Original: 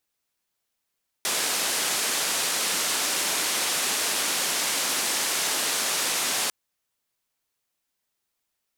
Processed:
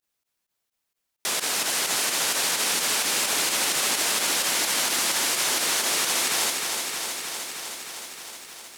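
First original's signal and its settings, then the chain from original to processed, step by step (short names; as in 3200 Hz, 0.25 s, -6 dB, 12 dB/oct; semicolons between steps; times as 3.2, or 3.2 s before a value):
noise band 250–10000 Hz, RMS -26 dBFS 5.25 s
pump 129 bpm, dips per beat 2, -18 dB, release 60 ms; lo-fi delay 0.311 s, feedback 80%, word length 9-bit, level -5.5 dB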